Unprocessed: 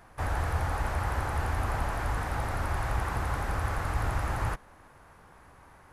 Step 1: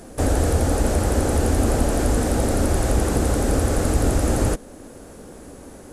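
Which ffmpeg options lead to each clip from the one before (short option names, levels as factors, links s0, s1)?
-filter_complex "[0:a]asplit=2[s0][s1];[s1]alimiter=level_in=1.33:limit=0.0631:level=0:latency=1:release=465,volume=0.75,volume=0.75[s2];[s0][s2]amix=inputs=2:normalize=0,equalizer=f=125:t=o:w=1:g=-5,equalizer=f=250:t=o:w=1:g=11,equalizer=f=500:t=o:w=1:g=8,equalizer=f=1000:t=o:w=1:g=-12,equalizer=f=2000:t=o:w=1:g=-7,equalizer=f=8000:t=o:w=1:g=11,volume=2.51"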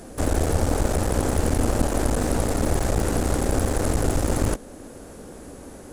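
-af "aeval=exprs='clip(val(0),-1,0.0398)':c=same"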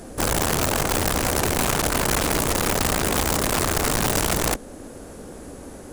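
-af "acontrast=48,aeval=exprs='(mod(3.55*val(0)+1,2)-1)/3.55':c=same,volume=0.631"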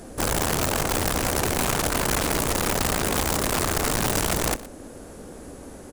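-af "aecho=1:1:119:0.126,volume=0.794"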